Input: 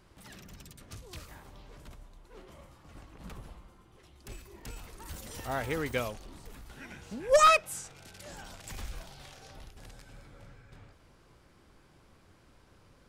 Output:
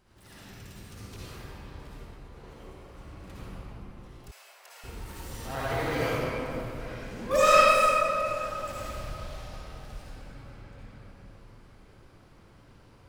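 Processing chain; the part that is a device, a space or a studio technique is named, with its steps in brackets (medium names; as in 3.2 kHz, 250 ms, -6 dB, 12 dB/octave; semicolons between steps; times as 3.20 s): shimmer-style reverb (harmony voices +12 st -10 dB; reverberation RT60 3.5 s, pre-delay 51 ms, DRR -9.5 dB); 4.31–4.84 s: elliptic high-pass 590 Hz, stop band 70 dB; trim -6 dB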